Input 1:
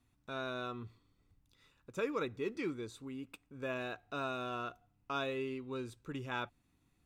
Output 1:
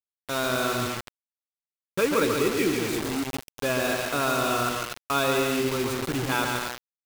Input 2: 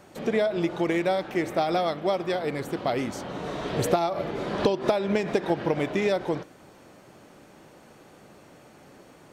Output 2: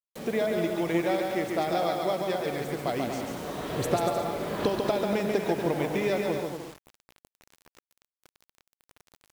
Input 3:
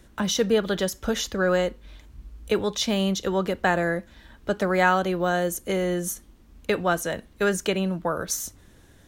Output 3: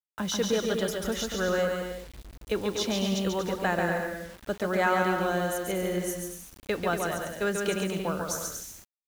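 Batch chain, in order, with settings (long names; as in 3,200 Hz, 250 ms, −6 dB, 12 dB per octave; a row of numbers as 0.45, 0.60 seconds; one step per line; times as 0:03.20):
downward expander −48 dBFS
bouncing-ball delay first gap 140 ms, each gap 0.7×, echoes 5
bit reduction 7 bits
normalise the peak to −12 dBFS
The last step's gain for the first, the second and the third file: +12.0, −4.0, −6.0 decibels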